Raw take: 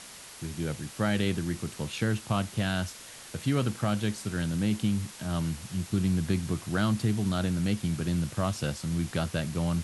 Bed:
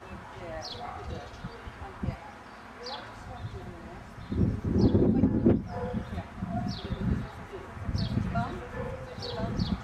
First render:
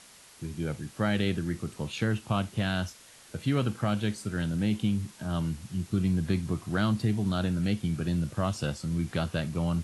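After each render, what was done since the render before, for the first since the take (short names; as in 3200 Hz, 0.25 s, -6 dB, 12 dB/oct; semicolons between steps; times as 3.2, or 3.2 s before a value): noise print and reduce 7 dB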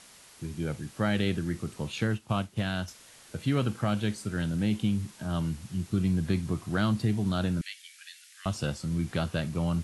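2.07–2.88 upward expander, over -43 dBFS; 7.61–8.46 elliptic high-pass 1800 Hz, stop band 80 dB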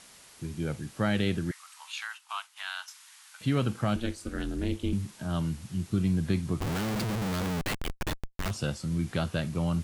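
1.51–3.41 steep high-pass 880 Hz 48 dB/oct; 3.96–4.93 ring modulator 120 Hz; 6.6–8.51 Schmitt trigger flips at -42 dBFS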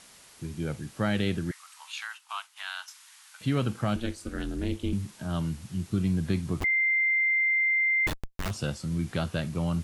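6.64–8.07 bleep 2090 Hz -21.5 dBFS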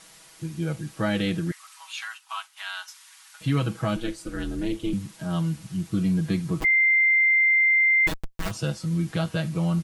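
comb 6.2 ms, depth 91%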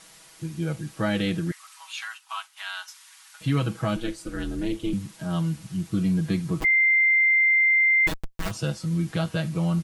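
nothing audible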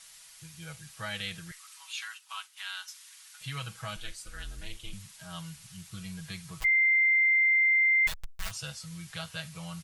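passive tone stack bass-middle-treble 10-0-10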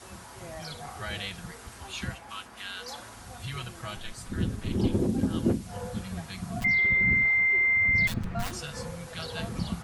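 add bed -3 dB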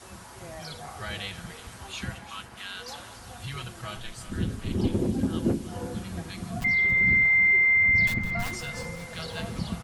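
regenerating reverse delay 0.178 s, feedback 69%, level -13.5 dB; echo 0.918 s -22 dB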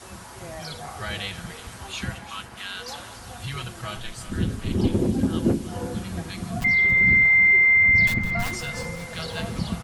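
gain +4 dB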